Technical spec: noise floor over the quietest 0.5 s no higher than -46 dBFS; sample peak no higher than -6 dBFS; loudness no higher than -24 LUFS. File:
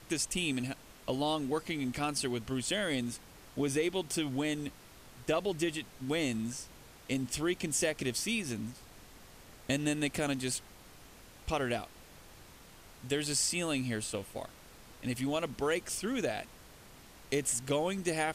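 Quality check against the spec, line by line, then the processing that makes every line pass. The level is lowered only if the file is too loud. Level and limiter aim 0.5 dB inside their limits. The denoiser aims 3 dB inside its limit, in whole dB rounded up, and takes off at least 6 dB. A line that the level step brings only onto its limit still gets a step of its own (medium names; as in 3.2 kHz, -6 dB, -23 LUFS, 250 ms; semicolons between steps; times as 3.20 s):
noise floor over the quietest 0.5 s -54 dBFS: pass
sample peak -16.0 dBFS: pass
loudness -34.0 LUFS: pass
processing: none needed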